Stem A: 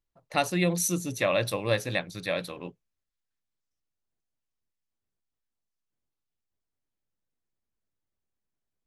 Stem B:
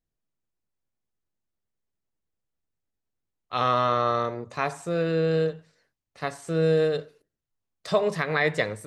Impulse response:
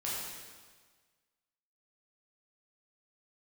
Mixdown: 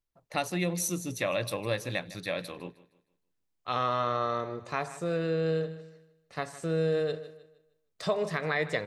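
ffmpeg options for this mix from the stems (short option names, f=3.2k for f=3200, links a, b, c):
-filter_complex "[0:a]volume=-2dB,asplit=2[a][b];[b]volume=-19dB[c];[1:a]adelay=150,volume=-2.5dB,asplit=2[d][e];[e]volume=-17dB[f];[c][f]amix=inputs=2:normalize=0,aecho=0:1:155|310|465|620|775:1|0.34|0.116|0.0393|0.0134[g];[a][d][g]amix=inputs=3:normalize=0,acompressor=threshold=-30dB:ratio=1.5"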